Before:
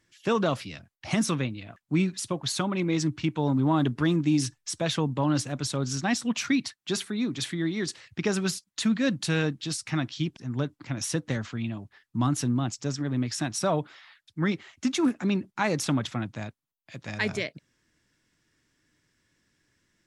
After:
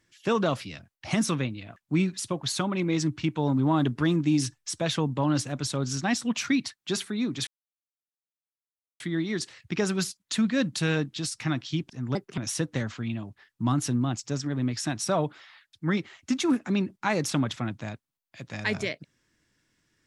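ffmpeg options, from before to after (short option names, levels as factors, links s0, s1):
-filter_complex "[0:a]asplit=4[s0][s1][s2][s3];[s0]atrim=end=7.47,asetpts=PTS-STARTPTS,afade=t=out:st=7.466:d=0.004:c=hsin,apad=pad_dur=1.53[s4];[s1]atrim=start=7.47:end=10.624,asetpts=PTS-STARTPTS,afade=t=in:d=0.004:c=hsin[s5];[s2]atrim=start=10.62:end=10.92,asetpts=PTS-STARTPTS,asetrate=58653,aresample=44100,atrim=end_sample=9947,asetpts=PTS-STARTPTS[s6];[s3]atrim=start=10.916[s7];[s4][s5]concat=n=2:v=0:a=1[s8];[s8][s6]acrossfade=d=0.004:c1=hsin:c2=hsin[s9];[s9][s7]acrossfade=d=0.004:c1=hsin:c2=hsin"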